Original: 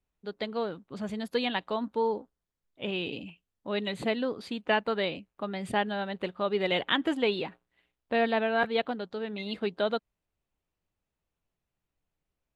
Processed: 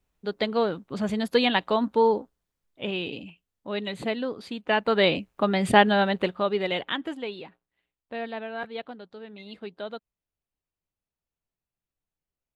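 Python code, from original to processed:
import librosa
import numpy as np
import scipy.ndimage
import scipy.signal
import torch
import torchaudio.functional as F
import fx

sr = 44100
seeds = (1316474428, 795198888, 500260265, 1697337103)

y = fx.gain(x, sr, db=fx.line((2.08, 7.5), (3.26, 0.5), (4.66, 0.5), (5.1, 11.0), (6.05, 11.0), (6.6, 1.5), (7.3, -7.5)))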